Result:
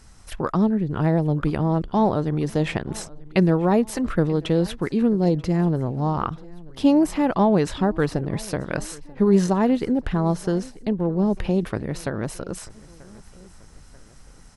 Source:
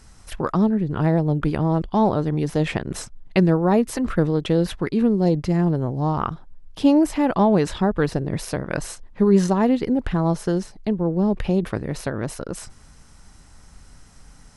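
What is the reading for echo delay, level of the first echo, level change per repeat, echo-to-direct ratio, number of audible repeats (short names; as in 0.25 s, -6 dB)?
0.937 s, -22.5 dB, -5.5 dB, -21.5 dB, 2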